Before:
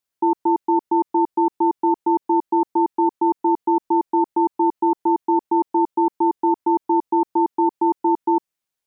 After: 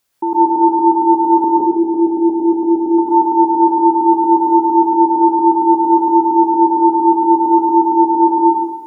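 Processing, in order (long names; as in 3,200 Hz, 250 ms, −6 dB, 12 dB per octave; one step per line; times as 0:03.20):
0:01.44–0:02.95: Butterworth low-pass 740 Hz 48 dB per octave
in parallel at +1.5 dB: compressor whose output falls as the input rises −31 dBFS, ratio −1
on the sum: dense smooth reverb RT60 1.1 s, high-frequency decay 0.55×, pre-delay 110 ms, DRR −4.5 dB
level −2 dB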